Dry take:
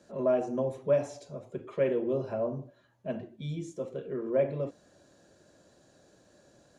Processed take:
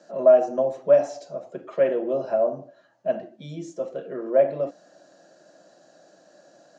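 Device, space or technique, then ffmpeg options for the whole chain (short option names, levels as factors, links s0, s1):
television speaker: -af "highpass=f=200:w=0.5412,highpass=f=200:w=1.3066,equalizer=f=240:t=q:w=4:g=-9,equalizer=f=410:t=q:w=4:g=-9,equalizer=f=670:t=q:w=4:g=7,equalizer=f=1000:t=q:w=4:g=-5,equalizer=f=2300:t=q:w=4:g=-7,equalizer=f=3500:t=q:w=4:g=-7,lowpass=f=6500:w=0.5412,lowpass=f=6500:w=1.3066,volume=2.51"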